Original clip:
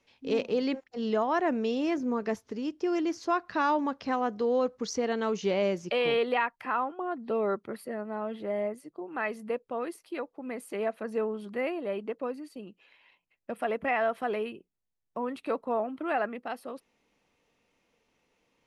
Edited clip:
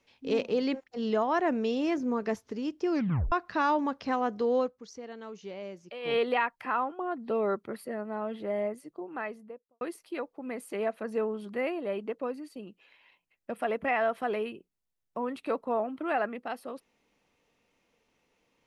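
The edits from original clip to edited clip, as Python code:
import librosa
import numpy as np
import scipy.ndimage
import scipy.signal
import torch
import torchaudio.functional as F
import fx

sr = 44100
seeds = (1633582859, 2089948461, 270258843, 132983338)

y = fx.studio_fade_out(x, sr, start_s=8.91, length_s=0.9)
y = fx.edit(y, sr, fx.tape_stop(start_s=2.91, length_s=0.41),
    fx.fade_down_up(start_s=4.6, length_s=1.56, db=-13.5, fade_s=0.14), tone=tone)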